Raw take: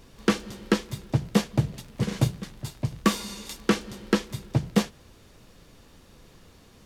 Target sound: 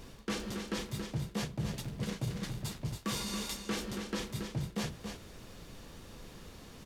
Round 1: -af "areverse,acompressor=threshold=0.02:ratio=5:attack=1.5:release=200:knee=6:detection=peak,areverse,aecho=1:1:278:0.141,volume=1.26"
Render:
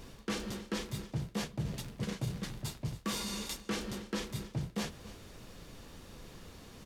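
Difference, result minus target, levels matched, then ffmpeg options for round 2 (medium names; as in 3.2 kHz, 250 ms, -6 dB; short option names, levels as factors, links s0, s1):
echo-to-direct -10 dB
-af "areverse,acompressor=threshold=0.02:ratio=5:attack=1.5:release=200:knee=6:detection=peak,areverse,aecho=1:1:278:0.447,volume=1.26"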